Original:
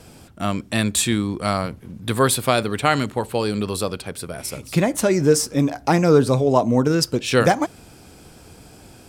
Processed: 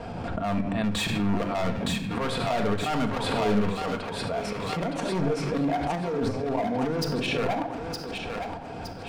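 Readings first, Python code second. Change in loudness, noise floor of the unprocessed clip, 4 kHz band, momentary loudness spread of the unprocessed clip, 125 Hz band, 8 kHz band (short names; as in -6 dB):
-8.0 dB, -46 dBFS, -6.0 dB, 12 LU, -7.5 dB, -16.0 dB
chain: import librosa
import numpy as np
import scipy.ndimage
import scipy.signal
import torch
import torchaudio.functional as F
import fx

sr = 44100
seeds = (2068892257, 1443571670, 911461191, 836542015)

p1 = scipy.signal.sosfilt(scipy.signal.butter(2, 2800.0, 'lowpass', fs=sr, output='sos'), x)
p2 = fx.peak_eq(p1, sr, hz=780.0, db=9.0, octaves=1.0)
p3 = fx.auto_swell(p2, sr, attack_ms=319.0)
p4 = fx.over_compress(p3, sr, threshold_db=-24.0, ratio=-1.0)
p5 = fx.step_gate(p4, sr, bpm=126, pattern='x.xxxx.xx.x', floor_db=-12.0, edge_ms=4.5)
p6 = np.clip(10.0 ** (25.5 / 20.0) * p5, -1.0, 1.0) / 10.0 ** (25.5 / 20.0)
p7 = p6 + fx.echo_thinned(p6, sr, ms=915, feedback_pct=43, hz=620.0, wet_db=-4.0, dry=0)
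p8 = fx.room_shoebox(p7, sr, seeds[0], volume_m3=2300.0, walls='furnished', distance_m=1.7)
y = fx.pre_swell(p8, sr, db_per_s=24.0)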